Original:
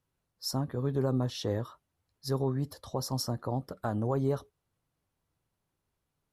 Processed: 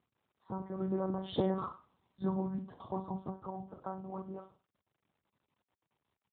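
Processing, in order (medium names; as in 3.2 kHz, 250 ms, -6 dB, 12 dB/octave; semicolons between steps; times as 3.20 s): Doppler pass-by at 1.65 s, 16 m/s, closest 2.2 m; ten-band graphic EQ 125 Hz +7 dB, 1 kHz +9 dB, 2 kHz -5 dB; compression 3:1, threshold -41 dBFS, peak gain reduction 11 dB; vibrato 13 Hz 15 cents; flutter echo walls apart 8.2 m, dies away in 0.38 s; monotone LPC vocoder at 8 kHz 190 Hz; trim +13 dB; AMR-NB 12.2 kbps 8 kHz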